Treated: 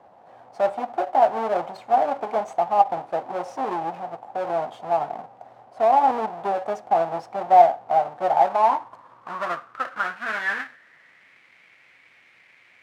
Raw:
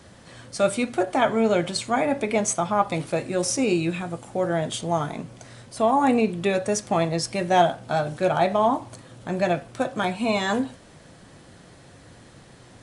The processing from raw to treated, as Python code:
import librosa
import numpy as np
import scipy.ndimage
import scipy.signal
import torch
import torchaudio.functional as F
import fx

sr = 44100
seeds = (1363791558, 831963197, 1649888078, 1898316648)

y = fx.halfwave_hold(x, sr)
y = fx.filter_sweep_bandpass(y, sr, from_hz=770.0, to_hz=2200.0, start_s=8.23, end_s=11.39, q=6.3)
y = y * 10.0 ** (7.0 / 20.0)